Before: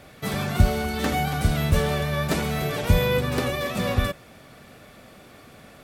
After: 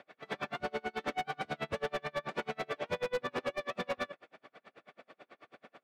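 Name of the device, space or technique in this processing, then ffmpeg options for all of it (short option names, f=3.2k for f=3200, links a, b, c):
helicopter radio: -af "highpass=370,lowpass=2.8k,aeval=exprs='val(0)*pow(10,-37*(0.5-0.5*cos(2*PI*9.2*n/s))/20)':c=same,asoftclip=type=hard:threshold=-28dB"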